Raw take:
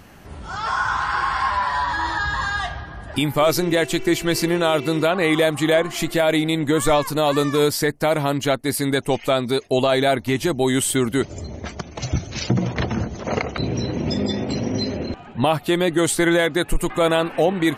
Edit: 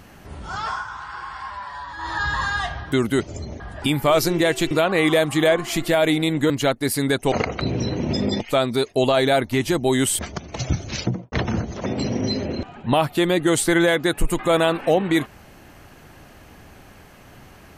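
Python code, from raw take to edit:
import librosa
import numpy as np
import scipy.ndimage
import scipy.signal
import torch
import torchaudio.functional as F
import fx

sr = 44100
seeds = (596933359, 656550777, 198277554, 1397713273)

y = fx.studio_fade_out(x, sr, start_s=12.37, length_s=0.38)
y = fx.edit(y, sr, fx.fade_down_up(start_s=0.58, length_s=1.66, db=-12.0, fade_s=0.28),
    fx.cut(start_s=4.03, length_s=0.94),
    fx.cut(start_s=6.76, length_s=1.57),
    fx.move(start_s=10.94, length_s=0.68, to_s=2.92),
    fx.move(start_s=13.29, length_s=1.08, to_s=9.15), tone=tone)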